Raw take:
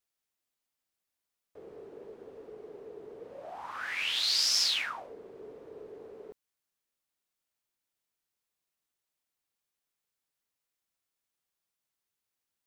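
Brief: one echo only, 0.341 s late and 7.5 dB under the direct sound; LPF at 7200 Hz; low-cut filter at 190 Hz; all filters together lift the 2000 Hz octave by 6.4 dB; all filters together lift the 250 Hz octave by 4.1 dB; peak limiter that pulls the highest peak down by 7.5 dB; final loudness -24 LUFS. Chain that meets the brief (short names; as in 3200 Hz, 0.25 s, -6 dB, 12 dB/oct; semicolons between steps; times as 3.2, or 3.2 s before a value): HPF 190 Hz; LPF 7200 Hz; bell 250 Hz +7 dB; bell 2000 Hz +8 dB; limiter -21.5 dBFS; echo 0.341 s -7.5 dB; gain +6.5 dB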